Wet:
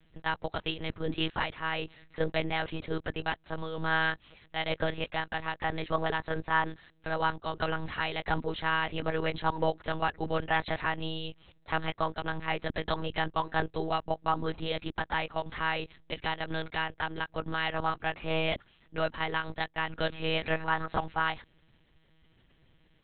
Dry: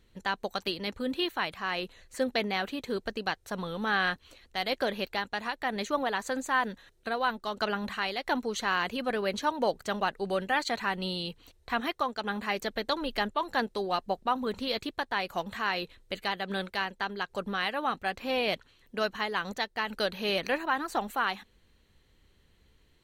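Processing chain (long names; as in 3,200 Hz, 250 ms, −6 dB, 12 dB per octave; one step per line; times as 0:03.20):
one-pitch LPC vocoder at 8 kHz 160 Hz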